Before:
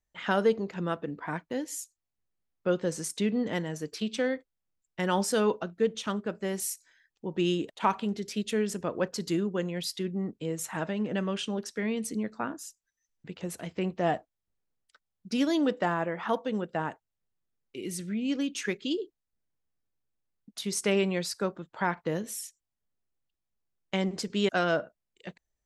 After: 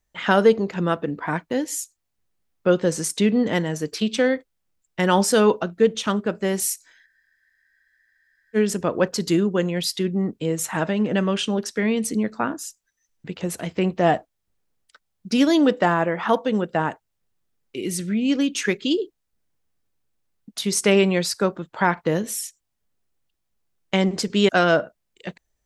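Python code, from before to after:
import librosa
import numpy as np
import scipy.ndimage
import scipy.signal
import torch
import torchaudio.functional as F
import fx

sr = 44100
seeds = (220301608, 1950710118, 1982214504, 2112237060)

y = fx.spec_freeze(x, sr, seeds[0], at_s=7.09, hold_s=1.47)
y = y * librosa.db_to_amplitude(9.0)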